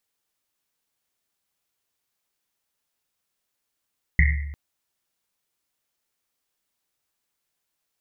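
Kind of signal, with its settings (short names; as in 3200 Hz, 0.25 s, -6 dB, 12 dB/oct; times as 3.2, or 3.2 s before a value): Risset drum length 0.35 s, pitch 72 Hz, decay 1.11 s, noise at 2000 Hz, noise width 310 Hz, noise 30%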